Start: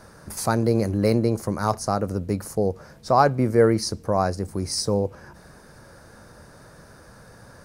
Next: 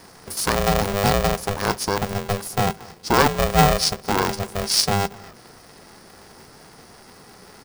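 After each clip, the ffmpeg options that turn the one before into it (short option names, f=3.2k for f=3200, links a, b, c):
-af "equalizer=f=400:t=o:w=0.33:g=4,equalizer=f=5k:t=o:w=0.33:g=11,equalizer=f=10k:t=o:w=0.33:g=7,aecho=1:1:230:0.0708,aeval=exprs='val(0)*sgn(sin(2*PI*300*n/s))':c=same"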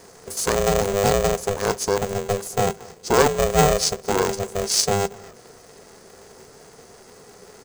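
-af "superequalizer=7b=2.51:8b=1.58:15b=2.51,volume=-3dB"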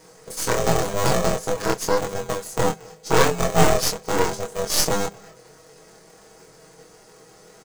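-af "aecho=1:1:6.3:0.69,aeval=exprs='0.891*(cos(1*acos(clip(val(0)/0.891,-1,1)))-cos(1*PI/2))+0.224*(cos(6*acos(clip(val(0)/0.891,-1,1)))-cos(6*PI/2))':c=same,flanger=delay=22.5:depth=2.1:speed=0.88,volume=-1dB"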